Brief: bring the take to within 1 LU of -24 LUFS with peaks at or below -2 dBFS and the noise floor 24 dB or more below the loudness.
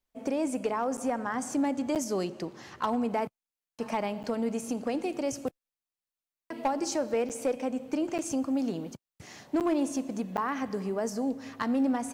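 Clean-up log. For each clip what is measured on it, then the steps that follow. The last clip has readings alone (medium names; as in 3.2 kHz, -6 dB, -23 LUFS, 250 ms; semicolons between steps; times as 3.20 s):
clipped samples 0.2%; clipping level -20.5 dBFS; dropouts 7; longest dropout 8.2 ms; loudness -31.5 LUFS; peak level -20.5 dBFS; loudness target -24.0 LUFS
-> clip repair -20.5 dBFS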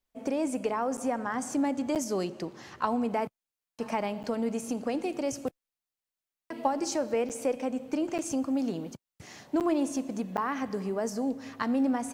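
clipped samples 0.0%; dropouts 7; longest dropout 8.2 ms
-> interpolate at 0.97/1.95/4.23/7.29/8.18/9.60/10.37 s, 8.2 ms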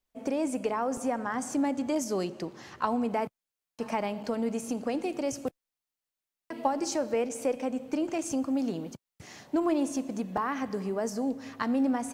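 dropouts 0; loudness -31.0 LUFS; peak level -14.0 dBFS; loudness target -24.0 LUFS
-> trim +7 dB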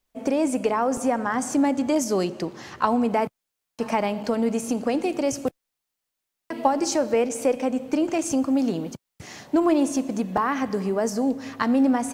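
loudness -24.0 LUFS; peak level -7.0 dBFS; noise floor -83 dBFS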